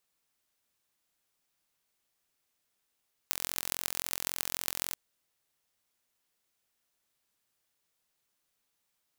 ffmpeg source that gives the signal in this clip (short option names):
-f lavfi -i "aevalsrc='0.841*eq(mod(n,1009),0)*(0.5+0.5*eq(mod(n,6054),0))':d=1.64:s=44100"